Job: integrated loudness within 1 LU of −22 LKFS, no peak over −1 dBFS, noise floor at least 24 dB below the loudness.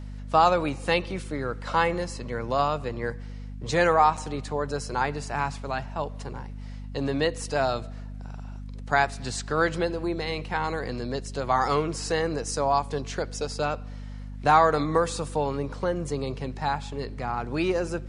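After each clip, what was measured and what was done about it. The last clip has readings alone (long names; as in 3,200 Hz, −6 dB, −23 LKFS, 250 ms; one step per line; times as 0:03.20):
number of dropouts 1; longest dropout 5.9 ms; mains hum 50 Hz; hum harmonics up to 250 Hz; level of the hum −35 dBFS; integrated loudness −27.0 LKFS; sample peak −6.5 dBFS; target loudness −22.0 LKFS
→ repair the gap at 0:04.17, 5.9 ms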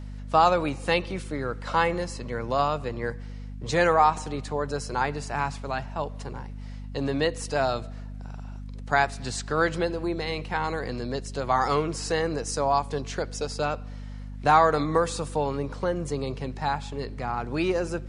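number of dropouts 0; mains hum 50 Hz; hum harmonics up to 250 Hz; level of the hum −35 dBFS
→ mains-hum notches 50/100/150/200/250 Hz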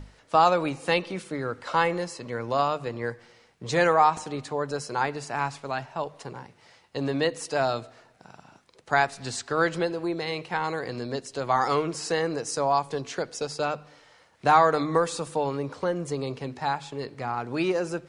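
mains hum none found; integrated loudness −27.0 LKFS; sample peak −6.5 dBFS; target loudness −22.0 LKFS
→ level +5 dB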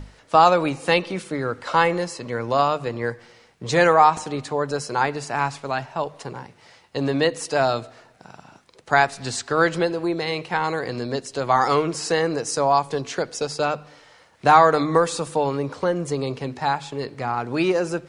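integrated loudness −22.0 LKFS; sample peak −1.5 dBFS; background noise floor −54 dBFS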